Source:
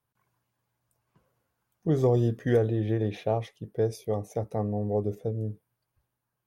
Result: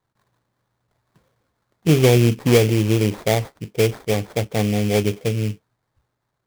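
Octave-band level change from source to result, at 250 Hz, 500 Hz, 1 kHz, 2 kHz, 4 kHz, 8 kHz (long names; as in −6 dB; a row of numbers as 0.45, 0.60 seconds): +9.5 dB, +7.5 dB, +7.0 dB, +17.0 dB, +22.0 dB, can't be measured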